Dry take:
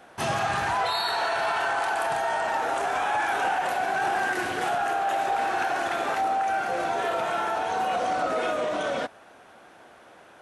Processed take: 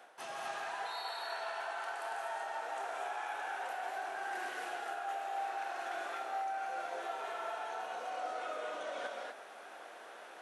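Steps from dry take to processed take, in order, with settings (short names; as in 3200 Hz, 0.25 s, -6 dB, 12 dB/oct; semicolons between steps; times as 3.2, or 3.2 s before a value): HPF 450 Hz 12 dB/oct; reverse; compressor 8:1, threshold -39 dBFS, peak gain reduction 16 dB; reverse; non-linear reverb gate 0.27 s rising, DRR -0.5 dB; gain -2.5 dB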